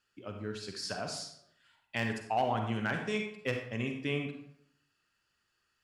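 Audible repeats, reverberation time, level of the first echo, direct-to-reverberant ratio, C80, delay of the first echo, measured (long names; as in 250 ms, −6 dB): no echo audible, 0.70 s, no echo audible, 3.5 dB, 8.5 dB, no echo audible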